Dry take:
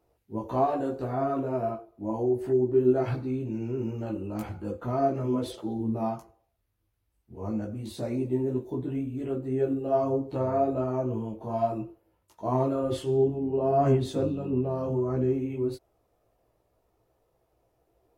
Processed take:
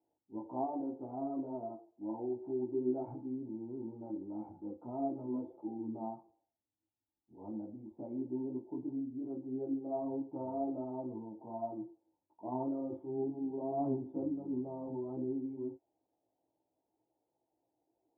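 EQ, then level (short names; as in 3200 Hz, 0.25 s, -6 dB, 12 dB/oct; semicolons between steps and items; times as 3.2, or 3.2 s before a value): vocal tract filter u; HPF 120 Hz; band shelf 920 Hz +9 dB; -3.5 dB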